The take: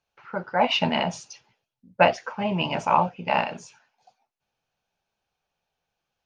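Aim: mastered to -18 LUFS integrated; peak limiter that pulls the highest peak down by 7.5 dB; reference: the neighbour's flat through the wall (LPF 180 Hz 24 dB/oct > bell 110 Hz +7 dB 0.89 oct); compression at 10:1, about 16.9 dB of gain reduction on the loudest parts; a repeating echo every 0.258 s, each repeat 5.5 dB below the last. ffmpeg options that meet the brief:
-af "acompressor=threshold=-30dB:ratio=10,alimiter=limit=-24dB:level=0:latency=1,lowpass=f=180:w=0.5412,lowpass=f=180:w=1.3066,equalizer=f=110:t=o:w=0.89:g=7,aecho=1:1:258|516|774|1032|1290|1548|1806:0.531|0.281|0.149|0.079|0.0419|0.0222|0.0118,volume=27dB"

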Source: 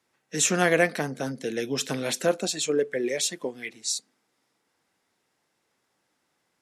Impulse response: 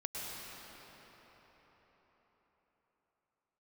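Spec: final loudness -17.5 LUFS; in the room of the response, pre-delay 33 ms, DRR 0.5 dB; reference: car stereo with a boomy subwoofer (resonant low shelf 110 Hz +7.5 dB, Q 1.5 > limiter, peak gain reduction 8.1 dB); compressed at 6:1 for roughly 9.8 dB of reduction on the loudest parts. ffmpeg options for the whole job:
-filter_complex "[0:a]acompressor=threshold=-27dB:ratio=6,asplit=2[a][b];[1:a]atrim=start_sample=2205,adelay=33[c];[b][c]afir=irnorm=-1:irlink=0,volume=-3dB[d];[a][d]amix=inputs=2:normalize=0,lowshelf=f=110:t=q:w=1.5:g=7.5,volume=16.5dB,alimiter=limit=-8dB:level=0:latency=1"

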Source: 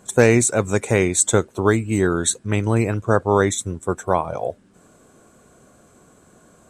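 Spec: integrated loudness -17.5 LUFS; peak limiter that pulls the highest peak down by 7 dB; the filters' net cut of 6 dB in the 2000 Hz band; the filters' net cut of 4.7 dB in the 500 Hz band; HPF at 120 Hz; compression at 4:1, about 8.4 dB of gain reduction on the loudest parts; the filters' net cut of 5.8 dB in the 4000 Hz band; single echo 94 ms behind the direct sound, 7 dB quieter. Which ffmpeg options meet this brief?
-af "highpass=120,equalizer=f=500:t=o:g=-5.5,equalizer=f=2k:t=o:g=-6.5,equalizer=f=4k:t=o:g=-5,acompressor=threshold=-23dB:ratio=4,alimiter=limit=-17dB:level=0:latency=1,aecho=1:1:94:0.447,volume=11.5dB"

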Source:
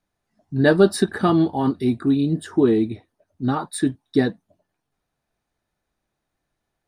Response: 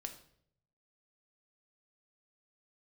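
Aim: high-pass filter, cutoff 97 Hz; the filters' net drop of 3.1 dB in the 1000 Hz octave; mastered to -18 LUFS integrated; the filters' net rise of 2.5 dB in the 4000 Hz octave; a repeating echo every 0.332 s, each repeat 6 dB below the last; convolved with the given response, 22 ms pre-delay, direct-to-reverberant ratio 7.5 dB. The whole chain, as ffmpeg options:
-filter_complex "[0:a]highpass=97,equalizer=f=1k:t=o:g=-4.5,equalizer=f=4k:t=o:g=3,aecho=1:1:332|664|996|1328|1660|1992:0.501|0.251|0.125|0.0626|0.0313|0.0157,asplit=2[a][b];[1:a]atrim=start_sample=2205,adelay=22[c];[b][c]afir=irnorm=-1:irlink=0,volume=-4.5dB[d];[a][d]amix=inputs=2:normalize=0,volume=1.5dB"

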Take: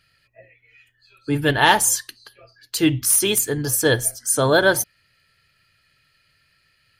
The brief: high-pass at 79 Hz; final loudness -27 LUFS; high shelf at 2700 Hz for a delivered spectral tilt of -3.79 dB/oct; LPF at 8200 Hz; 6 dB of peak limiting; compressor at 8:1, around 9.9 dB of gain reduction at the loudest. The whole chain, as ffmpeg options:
-af "highpass=79,lowpass=8.2k,highshelf=f=2.7k:g=4.5,acompressor=threshold=-20dB:ratio=8,volume=-0.5dB,alimiter=limit=-17dB:level=0:latency=1"

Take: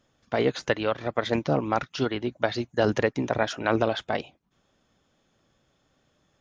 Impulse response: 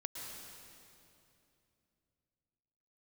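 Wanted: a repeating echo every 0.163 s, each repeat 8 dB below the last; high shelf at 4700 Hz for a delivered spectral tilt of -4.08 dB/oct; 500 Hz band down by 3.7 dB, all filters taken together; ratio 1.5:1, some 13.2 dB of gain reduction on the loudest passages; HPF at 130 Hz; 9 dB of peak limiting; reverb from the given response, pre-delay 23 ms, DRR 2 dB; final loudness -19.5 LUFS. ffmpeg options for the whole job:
-filter_complex "[0:a]highpass=130,equalizer=f=500:t=o:g=-4.5,highshelf=f=4.7k:g=-6,acompressor=threshold=-59dB:ratio=1.5,alimiter=level_in=6dB:limit=-24dB:level=0:latency=1,volume=-6dB,aecho=1:1:163|326|489|652|815:0.398|0.159|0.0637|0.0255|0.0102,asplit=2[a][b];[1:a]atrim=start_sample=2205,adelay=23[c];[b][c]afir=irnorm=-1:irlink=0,volume=-1dB[d];[a][d]amix=inputs=2:normalize=0,volume=22dB"

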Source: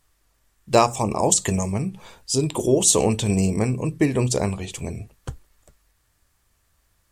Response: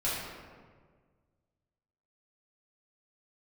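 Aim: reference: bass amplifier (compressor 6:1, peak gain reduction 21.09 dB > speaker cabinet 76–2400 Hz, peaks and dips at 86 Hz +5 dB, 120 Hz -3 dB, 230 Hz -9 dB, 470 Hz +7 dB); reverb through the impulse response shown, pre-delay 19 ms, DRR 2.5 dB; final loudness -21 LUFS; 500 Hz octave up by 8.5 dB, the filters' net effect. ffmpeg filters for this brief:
-filter_complex "[0:a]equalizer=f=500:t=o:g=6,asplit=2[a][b];[1:a]atrim=start_sample=2205,adelay=19[c];[b][c]afir=irnorm=-1:irlink=0,volume=-10.5dB[d];[a][d]amix=inputs=2:normalize=0,acompressor=threshold=-29dB:ratio=6,highpass=f=76:w=0.5412,highpass=f=76:w=1.3066,equalizer=f=86:t=q:w=4:g=5,equalizer=f=120:t=q:w=4:g=-3,equalizer=f=230:t=q:w=4:g=-9,equalizer=f=470:t=q:w=4:g=7,lowpass=f=2.4k:w=0.5412,lowpass=f=2.4k:w=1.3066,volume=10dB"

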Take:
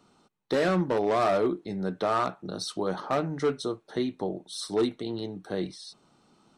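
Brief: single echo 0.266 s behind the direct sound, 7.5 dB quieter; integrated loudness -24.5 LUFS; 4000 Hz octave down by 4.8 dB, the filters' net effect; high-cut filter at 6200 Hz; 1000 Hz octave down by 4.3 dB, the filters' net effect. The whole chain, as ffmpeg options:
-af "lowpass=6.2k,equalizer=f=1k:t=o:g=-6,equalizer=f=4k:t=o:g=-4.5,aecho=1:1:266:0.422,volume=5.5dB"

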